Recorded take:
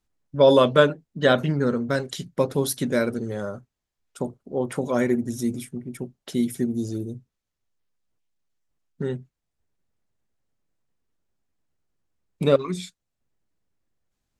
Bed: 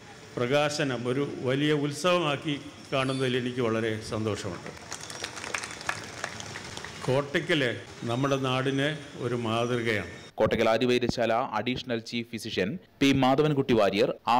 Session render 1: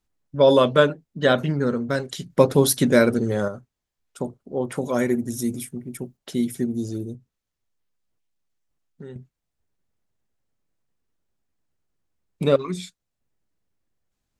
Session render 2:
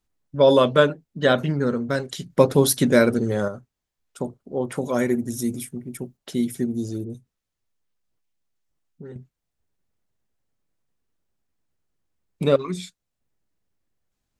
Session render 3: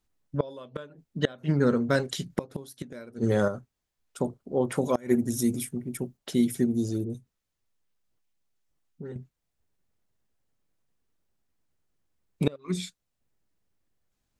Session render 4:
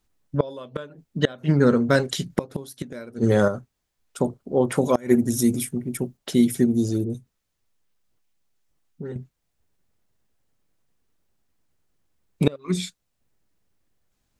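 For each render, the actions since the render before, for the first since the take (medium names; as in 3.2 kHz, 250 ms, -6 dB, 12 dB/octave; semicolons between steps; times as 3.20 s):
2.30–3.48 s: gain +6.5 dB; 4.77–6.17 s: treble shelf 9.1 kHz +11.5 dB; 7.15–9.16 s: compression 2:1, threshold -44 dBFS
7.04–9.12 s: phase dispersion highs, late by 61 ms, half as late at 1.7 kHz
inverted gate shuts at -10 dBFS, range -27 dB
trim +5.5 dB; peak limiter -2 dBFS, peak gain reduction 1.5 dB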